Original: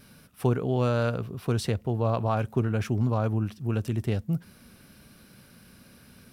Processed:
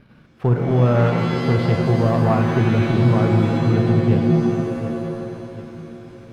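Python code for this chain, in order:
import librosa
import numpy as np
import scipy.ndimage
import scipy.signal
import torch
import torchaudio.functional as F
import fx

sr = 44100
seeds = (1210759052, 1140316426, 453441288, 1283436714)

p1 = fx.air_absorb(x, sr, metres=410.0)
p2 = fx.level_steps(p1, sr, step_db=14)
p3 = p1 + (p2 * librosa.db_to_amplitude(-2.5))
p4 = fx.echo_feedback(p3, sr, ms=737, feedback_pct=46, wet_db=-15.0)
p5 = fx.leveller(p4, sr, passes=1)
y = fx.rev_shimmer(p5, sr, seeds[0], rt60_s=2.0, semitones=7, shimmer_db=-2, drr_db=4.5)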